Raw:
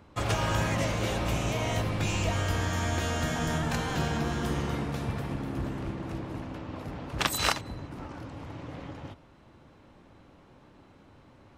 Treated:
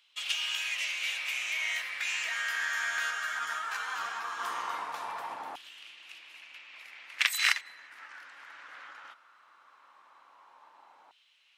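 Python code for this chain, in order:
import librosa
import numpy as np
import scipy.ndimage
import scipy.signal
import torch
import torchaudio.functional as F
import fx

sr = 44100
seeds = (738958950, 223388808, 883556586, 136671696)

y = fx.filter_lfo_highpass(x, sr, shape='saw_down', hz=0.18, low_hz=860.0, high_hz=3100.0, q=3.7)
y = fx.ensemble(y, sr, at=(3.1, 4.38), fade=0.02)
y = F.gain(torch.from_numpy(y), -2.5).numpy()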